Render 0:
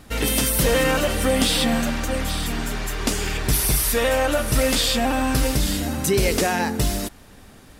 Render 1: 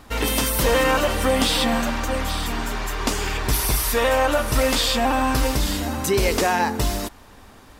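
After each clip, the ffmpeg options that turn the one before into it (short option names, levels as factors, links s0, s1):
-af "equalizer=f=160:t=o:w=0.67:g=-6,equalizer=f=1000:t=o:w=0.67:g=7,equalizer=f=10000:t=o:w=0.67:g=-4"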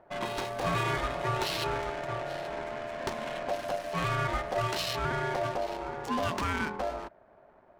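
-af "adynamicsmooth=sensitivity=3:basefreq=800,aeval=exprs='val(0)*sin(2*PI*640*n/s)':c=same,volume=0.398"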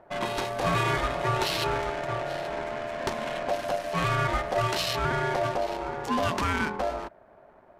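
-af "aresample=32000,aresample=44100,volume=1.58"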